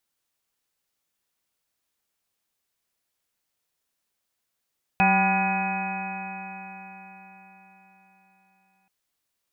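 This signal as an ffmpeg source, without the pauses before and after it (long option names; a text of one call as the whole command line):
ffmpeg -f lavfi -i "aevalsrc='0.0794*pow(10,-3*t/4.58)*sin(2*PI*188.38*t)+0.0126*pow(10,-3*t/4.58)*sin(2*PI*379*t)+0.0126*pow(10,-3*t/4.58)*sin(2*PI*574.06*t)+0.112*pow(10,-3*t/4.58)*sin(2*PI*775.69*t)+0.0398*pow(10,-3*t/4.58)*sin(2*PI*985.88*t)+0.0133*pow(10,-3*t/4.58)*sin(2*PI*1206.49*t)+0.0316*pow(10,-3*t/4.58)*sin(2*PI*1439.2*t)+0.0282*pow(10,-3*t/4.58)*sin(2*PI*1685.55*t)+0.0141*pow(10,-3*t/4.58)*sin(2*PI*1946.9*t)+0.0141*pow(10,-3*t/4.58)*sin(2*PI*2224.45*t)+0.0891*pow(10,-3*t/4.58)*sin(2*PI*2519.23*t)':duration=3.88:sample_rate=44100" out.wav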